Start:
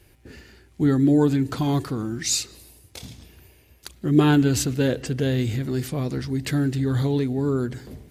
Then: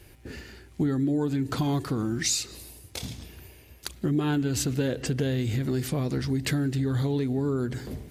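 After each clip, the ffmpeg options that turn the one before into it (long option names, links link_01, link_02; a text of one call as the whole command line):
ffmpeg -i in.wav -af "acompressor=threshold=-27dB:ratio=6,volume=3.5dB" out.wav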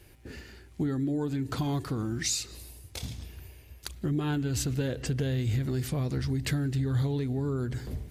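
ffmpeg -i in.wav -af "asubboost=boost=2.5:cutoff=130,volume=-3.5dB" out.wav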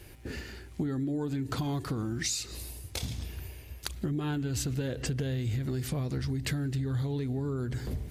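ffmpeg -i in.wav -af "acompressor=threshold=-36dB:ratio=3,volume=5dB" out.wav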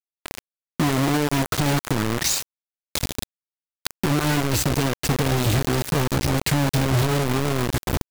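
ffmpeg -i in.wav -af "acrusher=bits=4:mix=0:aa=0.000001,volume=8.5dB" out.wav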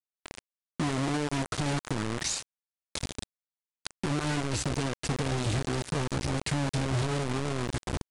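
ffmpeg -i in.wav -af "aresample=22050,aresample=44100,volume=-8.5dB" out.wav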